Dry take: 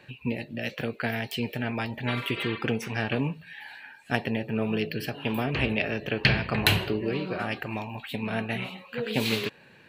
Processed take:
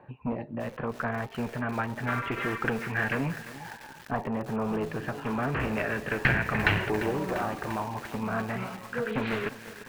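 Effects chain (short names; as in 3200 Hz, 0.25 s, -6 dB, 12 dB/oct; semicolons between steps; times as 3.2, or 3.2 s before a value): one-sided clip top -27 dBFS; LFO low-pass saw up 0.29 Hz 940–1900 Hz; lo-fi delay 0.346 s, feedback 80%, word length 6-bit, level -12.5 dB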